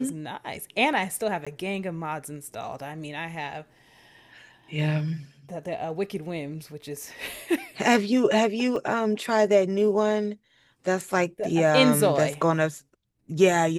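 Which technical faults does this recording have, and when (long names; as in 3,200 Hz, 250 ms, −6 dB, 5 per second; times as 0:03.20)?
0:01.45–0:01.47: drop-out 16 ms
0:08.76: drop-out 2.4 ms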